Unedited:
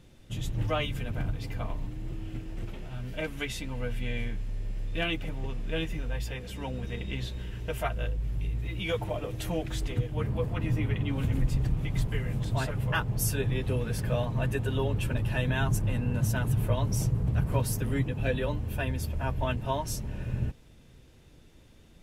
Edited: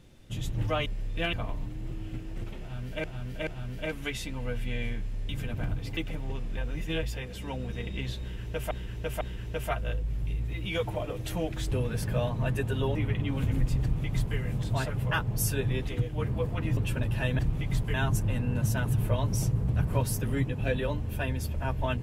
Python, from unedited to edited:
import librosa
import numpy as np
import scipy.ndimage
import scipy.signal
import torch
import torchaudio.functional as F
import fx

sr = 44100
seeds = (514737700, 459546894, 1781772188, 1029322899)

y = fx.edit(x, sr, fx.swap(start_s=0.86, length_s=0.68, other_s=4.64, other_length_s=0.47),
    fx.repeat(start_s=2.82, length_s=0.43, count=3),
    fx.reverse_span(start_s=5.71, length_s=0.46),
    fx.repeat(start_s=7.35, length_s=0.5, count=3),
    fx.swap(start_s=9.86, length_s=0.9, other_s=13.68, other_length_s=1.23),
    fx.duplicate(start_s=11.63, length_s=0.55, to_s=15.53), tone=tone)